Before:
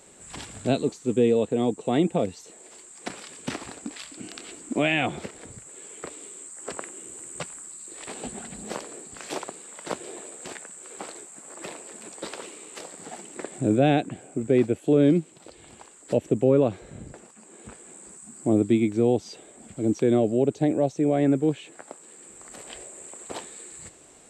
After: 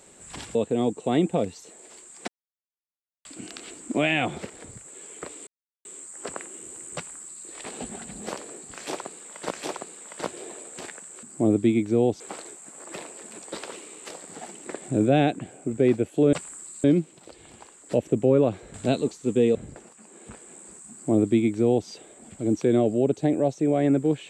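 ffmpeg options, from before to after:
-filter_complex "[0:a]asplit=12[s0][s1][s2][s3][s4][s5][s6][s7][s8][s9][s10][s11];[s0]atrim=end=0.552[s12];[s1]atrim=start=1.358:end=3.09,asetpts=PTS-STARTPTS,afade=t=out:st=1.728:d=0.004:c=hsin[s13];[s2]atrim=start=3.09:end=4.06,asetpts=PTS-STARTPTS,volume=0[s14];[s3]atrim=start=4.06:end=6.28,asetpts=PTS-STARTPTS,afade=t=in:d=0.004:c=hsin,afade=t=out:st=2.216:d=0.004:c=hsin,apad=pad_dur=0.38[s15];[s4]atrim=start=6.28:end=9.942,asetpts=PTS-STARTPTS,afade=t=in:d=0.004:c=hsin[s16];[s5]atrim=start=9.178:end=10.902[s17];[s6]atrim=start=18.288:end=19.262[s18];[s7]atrim=start=10.898:end=15.032[s19];[s8]atrim=start=7.378:end=7.892[s20];[s9]atrim=start=15.028:end=16.932[s21];[s10]atrim=start=0.548:end=1.362[s22];[s11]atrim=start=16.928[s23];[s13][s14][s15][s16]concat=n=4:v=0:a=1[s24];[s12][s24]acrossfade=d=0.004:c1=hsin:c2=hsin[s25];[s25][s17]acrossfade=d=0.004:c1=hsin:c2=hsin[s26];[s26][s18]acrossfade=d=0.004:c1=hsin:c2=hsin[s27];[s27][s19]acrossfade=d=0.004:c1=hsin:c2=hsin[s28];[s28][s20]acrossfade=d=0.004:c1=hsin:c2=hsin[s29];[s29][s21]acrossfade=d=0.004:c1=hsin:c2=hsin[s30];[s30][s22]acrossfade=d=0.004:c1=hsin:c2=hsin[s31];[s31][s23]acrossfade=d=0.004:c1=hsin:c2=hsin"

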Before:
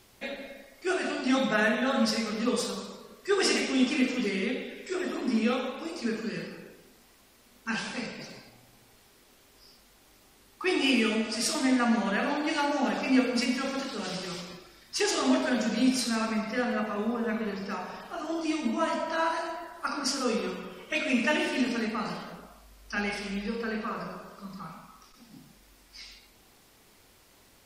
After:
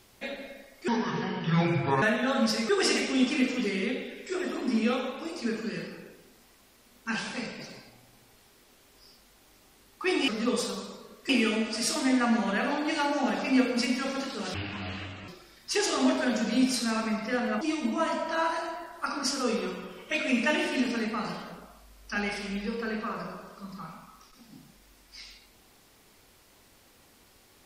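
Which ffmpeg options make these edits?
-filter_complex "[0:a]asplit=9[s0][s1][s2][s3][s4][s5][s6][s7][s8];[s0]atrim=end=0.884[s9];[s1]atrim=start=0.88:end=1.61,asetpts=PTS-STARTPTS,asetrate=28224,aresample=44100[s10];[s2]atrim=start=1.606:end=2.282[s11];[s3]atrim=start=3.288:end=10.882[s12];[s4]atrim=start=2.278:end=3.292[s13];[s5]atrim=start=10.878:end=14.134[s14];[s6]atrim=start=14.13:end=14.53,asetpts=PTS-STARTPTS,asetrate=23814,aresample=44100[s15];[s7]atrim=start=14.526:end=16.862[s16];[s8]atrim=start=18.418[s17];[s9][s10]acrossfade=d=0.004:c1=hsin:c2=hsin[s18];[s18][s11]acrossfade=d=0.004:c1=hsin:c2=hsin[s19];[s19][s12]acrossfade=d=0.004:c1=hsin:c2=hsin[s20];[s20][s13]acrossfade=d=0.004:c1=hsin:c2=hsin[s21];[s21][s14]acrossfade=d=0.004:c1=hsin:c2=hsin[s22];[s22][s15]acrossfade=d=0.004:c1=hsin:c2=hsin[s23];[s23][s16]acrossfade=d=0.004:c1=hsin:c2=hsin[s24];[s24][s17]acrossfade=d=0.004:c1=hsin:c2=hsin"

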